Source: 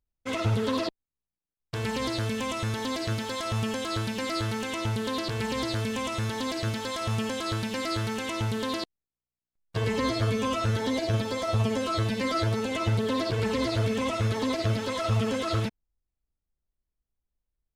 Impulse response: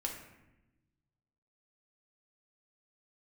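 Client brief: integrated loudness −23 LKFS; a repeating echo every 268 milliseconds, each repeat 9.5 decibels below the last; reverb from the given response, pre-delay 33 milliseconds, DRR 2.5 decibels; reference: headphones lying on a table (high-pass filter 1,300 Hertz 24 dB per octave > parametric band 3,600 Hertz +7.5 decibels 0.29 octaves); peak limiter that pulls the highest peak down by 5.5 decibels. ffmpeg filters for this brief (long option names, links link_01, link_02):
-filter_complex "[0:a]alimiter=limit=-20dB:level=0:latency=1,aecho=1:1:268|536|804|1072:0.335|0.111|0.0365|0.012,asplit=2[link_01][link_02];[1:a]atrim=start_sample=2205,adelay=33[link_03];[link_02][link_03]afir=irnorm=-1:irlink=0,volume=-3.5dB[link_04];[link_01][link_04]amix=inputs=2:normalize=0,highpass=frequency=1300:width=0.5412,highpass=frequency=1300:width=1.3066,equalizer=frequency=3600:width_type=o:width=0.29:gain=7.5,volume=9dB"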